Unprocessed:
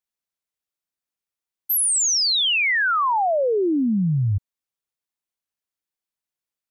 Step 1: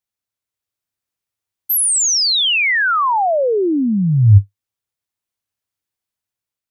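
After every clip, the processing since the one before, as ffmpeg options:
-af "equalizer=f=100:w=2.6:g=13,dynaudnorm=f=190:g=7:m=1.41,volume=1.19"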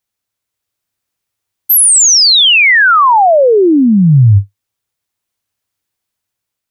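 -af "alimiter=level_in=2.99:limit=0.891:release=50:level=0:latency=1,volume=0.891"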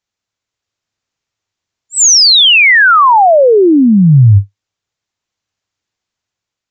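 -af "aresample=16000,aresample=44100,volume=1.12"

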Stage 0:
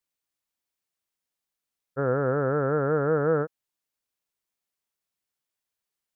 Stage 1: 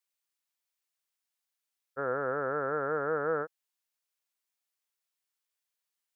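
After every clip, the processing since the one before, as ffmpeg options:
-af "highpass=f=1000:p=1"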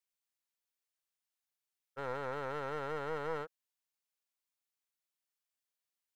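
-af "aeval=exprs='clip(val(0),-1,0.0119)':c=same,volume=0.562"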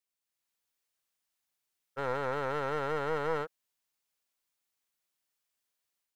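-af "dynaudnorm=f=250:g=3:m=2"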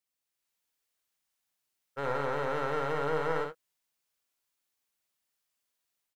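-af "aecho=1:1:57|78:0.596|0.141"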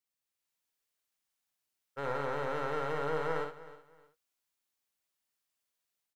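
-af "aecho=1:1:312|624:0.141|0.0367,volume=0.708"

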